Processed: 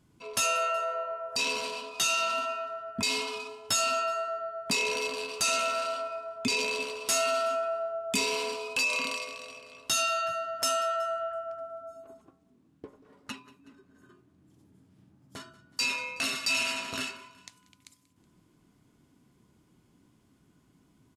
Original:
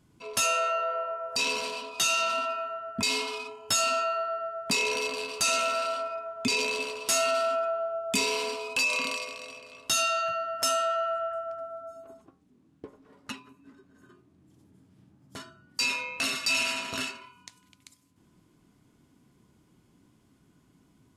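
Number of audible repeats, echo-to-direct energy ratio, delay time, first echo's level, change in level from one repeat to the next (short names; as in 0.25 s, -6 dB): 2, -20.0 dB, 0.186 s, -21.0 dB, -5.0 dB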